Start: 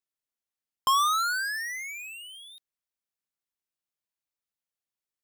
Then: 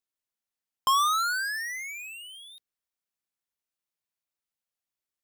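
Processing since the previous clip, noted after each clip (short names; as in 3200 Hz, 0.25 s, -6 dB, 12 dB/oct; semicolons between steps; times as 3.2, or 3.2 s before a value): notches 60/120/180/240/300/360/420/480 Hz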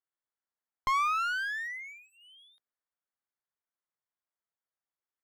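polynomial smoothing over 41 samples; low shelf 390 Hz -10.5 dB; one-sided clip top -36 dBFS, bottom -21.5 dBFS; gain +1.5 dB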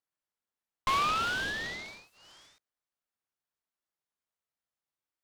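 noise-modulated delay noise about 1700 Hz, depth 0.051 ms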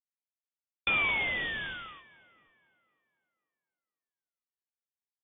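gate -52 dBFS, range -17 dB; inverted band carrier 3500 Hz; tape echo 0.503 s, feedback 35%, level -21 dB, low-pass 2300 Hz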